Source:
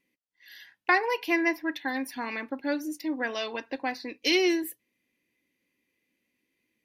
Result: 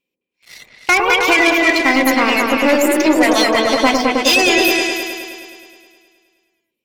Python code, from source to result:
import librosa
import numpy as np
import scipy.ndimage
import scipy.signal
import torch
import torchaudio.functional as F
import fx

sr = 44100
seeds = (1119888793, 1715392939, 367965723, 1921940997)

p1 = fx.formant_shift(x, sr, semitones=3)
p2 = fx.rider(p1, sr, range_db=10, speed_s=0.5)
p3 = p1 + (p2 * 10.0 ** (-2.0 / 20.0))
p4 = fx.leveller(p3, sr, passes=3)
p5 = fx.dereverb_blind(p4, sr, rt60_s=0.77)
y = fx.echo_opening(p5, sr, ms=105, hz=750, octaves=2, feedback_pct=70, wet_db=0)